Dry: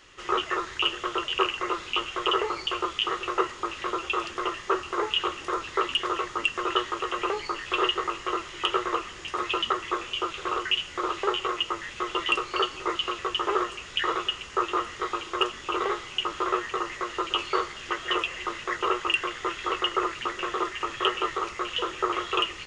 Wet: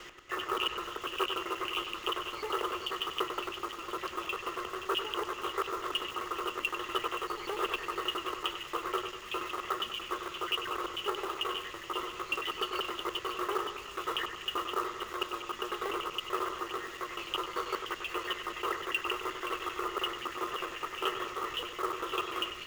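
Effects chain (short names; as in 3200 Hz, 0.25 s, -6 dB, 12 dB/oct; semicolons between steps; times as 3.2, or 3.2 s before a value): slices in reverse order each 97 ms, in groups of 3; short-mantissa float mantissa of 2-bit; split-band echo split 2900 Hz, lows 97 ms, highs 0.524 s, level -8 dB; gain -7.5 dB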